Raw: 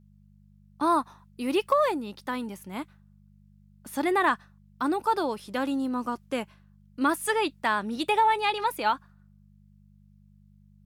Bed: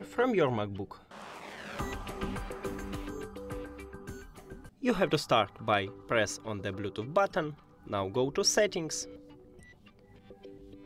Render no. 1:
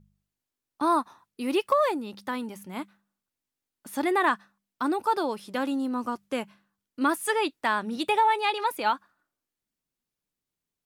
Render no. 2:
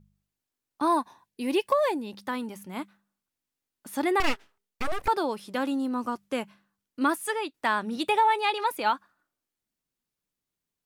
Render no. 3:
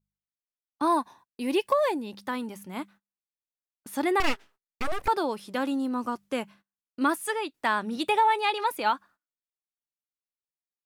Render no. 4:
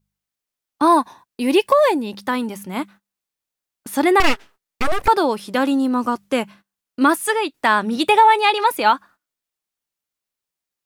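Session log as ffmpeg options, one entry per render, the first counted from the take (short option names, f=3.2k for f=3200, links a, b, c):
-af "bandreject=f=50:t=h:w=4,bandreject=f=100:t=h:w=4,bandreject=f=150:t=h:w=4,bandreject=f=200:t=h:w=4"
-filter_complex "[0:a]asettb=1/sr,asplit=3[a][b][c];[a]atrim=end=0.874[d];[b]atrim=start=0.87:end=2.15,asetpts=PTS-STARTPTS,afade=t=in:d=0.004:c=qsin,afade=t=out:st=1.276:d=0.004:c=qsin,asuperstop=centerf=1300:order=4:qfactor=4.2[e];[c]atrim=start=2.146[f];[d][e]acrossfade=d=0.004:c1=hsin:c2=qsin[g];[g][f]acrossfade=d=0.004:c1=qsin:c2=hsin,asettb=1/sr,asplit=3[h][i][j];[h]atrim=end=4.204[k];[i]atrim=start=4.2:end=5.08,asetpts=PTS-STARTPTS,afade=t=in:d=0.004:c=qsin,afade=t=out:st=0.876:d=0.004:c=qsin,aeval=exprs='abs(val(0))':c=same[l];[j]atrim=start=5.076[m];[k][l]acrossfade=d=0.004:c1=hsin:c2=qsin[n];[n][m]acrossfade=d=0.004:c1=qsin:c2=hsin,asplit=2[o][p];[o]atrim=end=7.54,asetpts=PTS-STARTPTS,afade=t=out:st=7.05:d=0.49:silence=0.375837[q];[p]atrim=start=7.54,asetpts=PTS-STARTPTS,afade=t=in:d=0.004:c=hsin:silence=0.375837[r];[q][r]concat=n=2:v=0:a=1"
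-af "agate=range=-23dB:threshold=-52dB:ratio=16:detection=peak"
-af "volume=10dB,alimiter=limit=-3dB:level=0:latency=1"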